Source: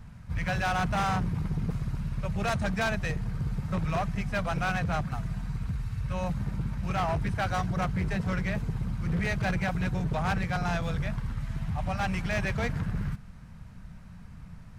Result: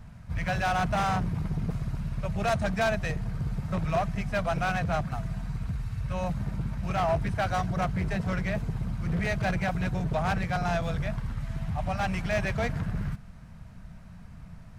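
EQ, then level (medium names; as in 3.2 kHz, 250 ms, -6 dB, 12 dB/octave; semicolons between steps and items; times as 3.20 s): peaking EQ 660 Hz +6.5 dB 0.27 oct; 0.0 dB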